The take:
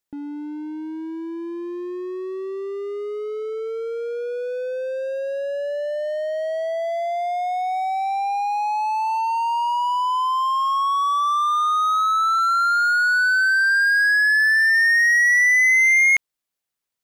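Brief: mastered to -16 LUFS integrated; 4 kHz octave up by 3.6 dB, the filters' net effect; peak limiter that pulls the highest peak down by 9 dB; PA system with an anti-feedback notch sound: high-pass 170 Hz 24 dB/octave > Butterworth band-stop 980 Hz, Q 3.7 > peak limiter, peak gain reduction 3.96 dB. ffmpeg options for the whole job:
-af "equalizer=f=4000:t=o:g=4.5,alimiter=limit=0.112:level=0:latency=1,highpass=f=170:w=0.5412,highpass=f=170:w=1.3066,asuperstop=centerf=980:order=8:qfactor=3.7,volume=3.55,alimiter=limit=0.237:level=0:latency=1"

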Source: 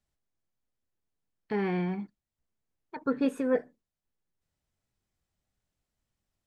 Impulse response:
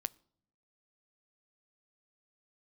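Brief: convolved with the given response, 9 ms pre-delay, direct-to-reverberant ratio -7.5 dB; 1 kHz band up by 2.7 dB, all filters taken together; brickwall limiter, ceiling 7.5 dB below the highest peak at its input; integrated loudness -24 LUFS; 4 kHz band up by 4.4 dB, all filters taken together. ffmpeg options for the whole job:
-filter_complex "[0:a]equalizer=f=1000:t=o:g=3.5,equalizer=f=4000:t=o:g=5.5,alimiter=limit=0.0794:level=0:latency=1,asplit=2[s0][s1];[1:a]atrim=start_sample=2205,adelay=9[s2];[s1][s2]afir=irnorm=-1:irlink=0,volume=2.66[s3];[s0][s3]amix=inputs=2:normalize=0,volume=1.33"

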